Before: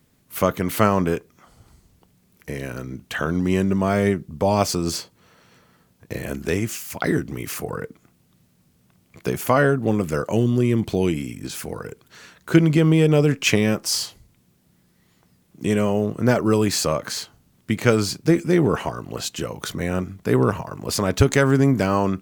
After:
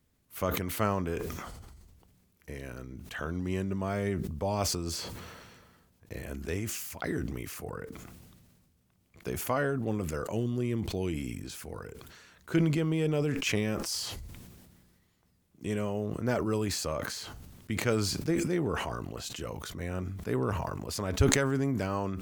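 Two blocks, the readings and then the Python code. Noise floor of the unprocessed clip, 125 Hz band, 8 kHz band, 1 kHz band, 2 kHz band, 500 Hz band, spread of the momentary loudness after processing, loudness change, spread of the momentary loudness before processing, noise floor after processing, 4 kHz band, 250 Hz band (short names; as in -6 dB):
-62 dBFS, -10.5 dB, -7.5 dB, -10.5 dB, -10.0 dB, -11.0 dB, 16 LU, -10.5 dB, 14 LU, -69 dBFS, -8.5 dB, -11.5 dB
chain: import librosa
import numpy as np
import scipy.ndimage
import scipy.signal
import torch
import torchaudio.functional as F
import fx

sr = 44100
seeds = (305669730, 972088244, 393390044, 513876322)

y = fx.low_shelf_res(x, sr, hz=100.0, db=6.0, q=1.5)
y = fx.sustainer(y, sr, db_per_s=32.0)
y = F.gain(torch.from_numpy(y), -12.0).numpy()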